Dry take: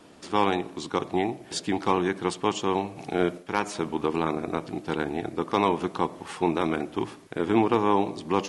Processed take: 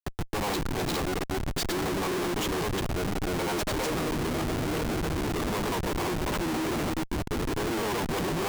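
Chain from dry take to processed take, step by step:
noise gate with hold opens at −35 dBFS
granular cloud, spray 314 ms
comparator with hysteresis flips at −38 dBFS

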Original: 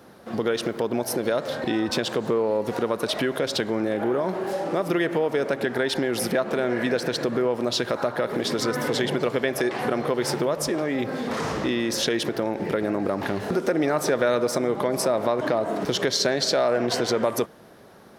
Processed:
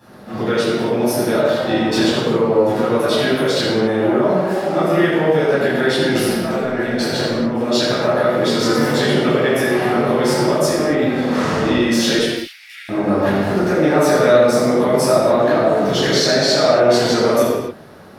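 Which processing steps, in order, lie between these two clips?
0:06.15–0:07.52: compressor whose output falls as the input rises −29 dBFS, ratio −1
0:12.17–0:12.89: Butterworth high-pass 2,100 Hz 36 dB per octave
convolution reverb, pre-delay 9 ms, DRR −10.5 dB
level −5.5 dB

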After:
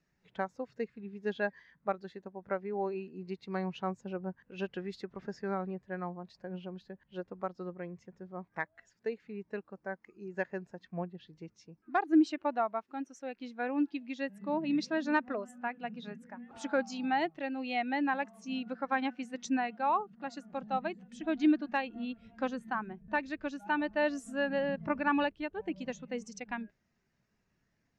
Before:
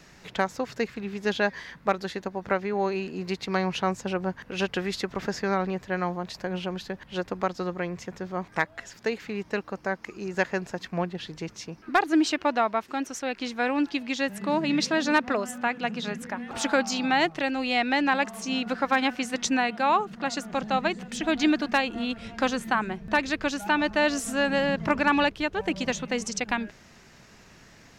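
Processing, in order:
every bin expanded away from the loudest bin 1.5 to 1
level −6.5 dB

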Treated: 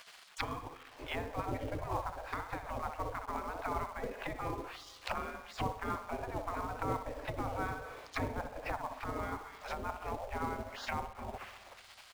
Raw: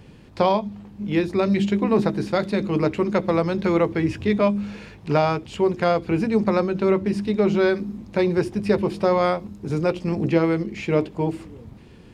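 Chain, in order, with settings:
harmonic generator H 5 −27 dB, 6 −38 dB, 7 −35 dB, 8 −32 dB, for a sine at −5 dBFS
repeating echo 65 ms, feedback 42%, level −8.5 dB
treble cut that deepens with the level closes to 530 Hz, closed at −18 dBFS
gate on every frequency bin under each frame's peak −25 dB weak
in parallel at −8 dB: log-companded quantiser 4 bits
on the sum: spring reverb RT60 2.9 s, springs 38/44 ms, chirp 75 ms, DRR 18 dB
level +3 dB

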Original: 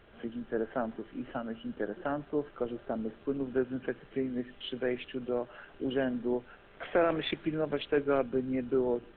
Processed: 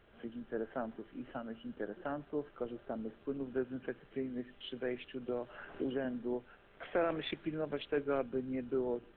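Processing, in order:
0:05.28–0:06.05: multiband upward and downward compressor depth 100%
level −6 dB

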